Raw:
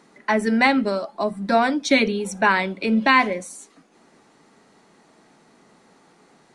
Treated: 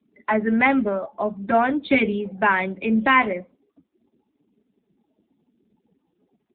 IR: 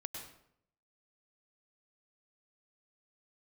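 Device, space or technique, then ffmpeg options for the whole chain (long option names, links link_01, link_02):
mobile call with aggressive noise cancelling: -af "highpass=100,afftdn=noise_reduction=35:noise_floor=-44" -ar 8000 -c:a libopencore_amrnb -b:a 7950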